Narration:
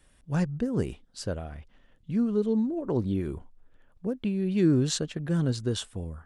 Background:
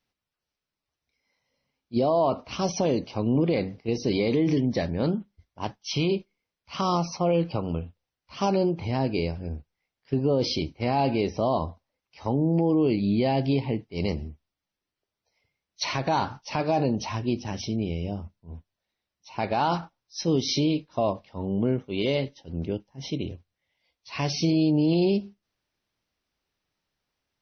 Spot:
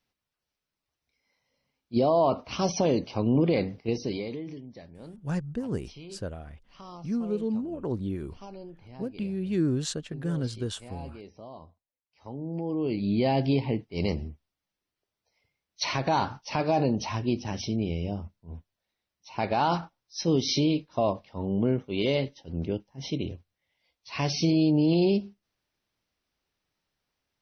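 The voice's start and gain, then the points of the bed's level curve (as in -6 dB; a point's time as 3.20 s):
4.95 s, -3.5 dB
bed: 3.86 s 0 dB
4.64 s -20 dB
11.87 s -20 dB
13.26 s -0.5 dB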